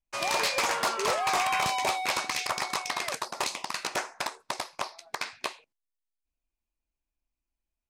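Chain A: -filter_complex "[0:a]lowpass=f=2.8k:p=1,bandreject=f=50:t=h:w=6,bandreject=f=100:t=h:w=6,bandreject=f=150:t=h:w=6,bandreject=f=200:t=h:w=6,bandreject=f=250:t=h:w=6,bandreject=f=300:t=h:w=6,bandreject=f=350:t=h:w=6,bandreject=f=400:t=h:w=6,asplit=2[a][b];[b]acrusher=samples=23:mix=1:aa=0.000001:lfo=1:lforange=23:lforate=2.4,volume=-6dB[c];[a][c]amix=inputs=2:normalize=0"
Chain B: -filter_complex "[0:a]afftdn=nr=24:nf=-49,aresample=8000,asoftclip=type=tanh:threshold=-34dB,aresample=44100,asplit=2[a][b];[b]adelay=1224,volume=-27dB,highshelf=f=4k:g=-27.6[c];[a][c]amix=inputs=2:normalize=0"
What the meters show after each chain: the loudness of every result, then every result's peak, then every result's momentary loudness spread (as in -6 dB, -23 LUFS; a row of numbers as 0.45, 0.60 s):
-30.0, -37.5 LUFS; -16.5, -29.0 dBFS; 11, 9 LU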